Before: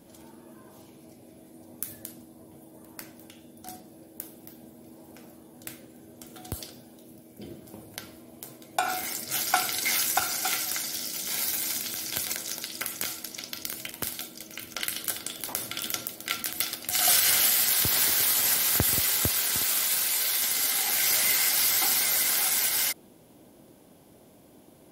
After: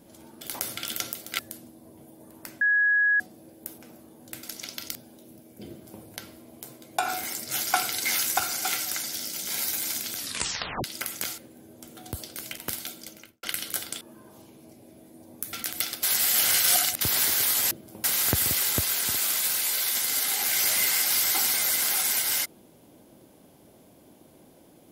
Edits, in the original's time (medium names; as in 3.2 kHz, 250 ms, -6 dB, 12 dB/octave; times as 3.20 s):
0.41–1.93 s: swap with 15.35–16.33 s
3.15–3.74 s: bleep 1.67 kHz -18.5 dBFS
4.32–5.12 s: delete
5.77–6.75 s: swap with 13.18–13.70 s
7.50–7.83 s: copy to 18.51 s
11.97 s: tape stop 0.67 s
14.40–14.77 s: studio fade out
16.83–17.81 s: reverse